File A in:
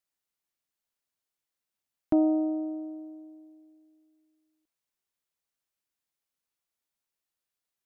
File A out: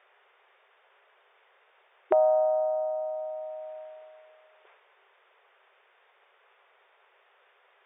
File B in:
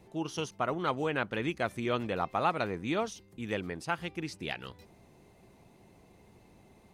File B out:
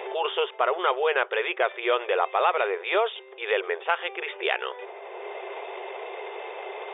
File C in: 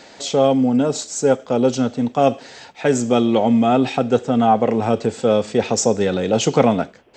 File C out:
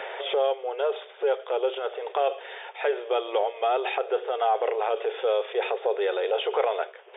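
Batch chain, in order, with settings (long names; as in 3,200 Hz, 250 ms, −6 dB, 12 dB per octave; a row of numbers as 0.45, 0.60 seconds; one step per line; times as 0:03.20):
transient designer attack −4 dB, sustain +5 dB
linear-phase brick-wall band-pass 370–3,700 Hz
multiband upward and downward compressor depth 70%
loudness normalisation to −27 LKFS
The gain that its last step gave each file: +14.0, +10.0, −6.0 decibels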